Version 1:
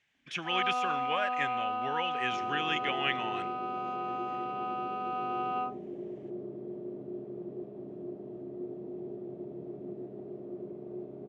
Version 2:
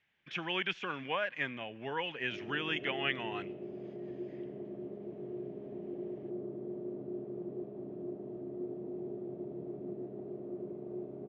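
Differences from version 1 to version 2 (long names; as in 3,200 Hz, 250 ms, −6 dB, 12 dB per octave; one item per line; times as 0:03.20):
first sound: muted
master: add high-frequency loss of the air 180 metres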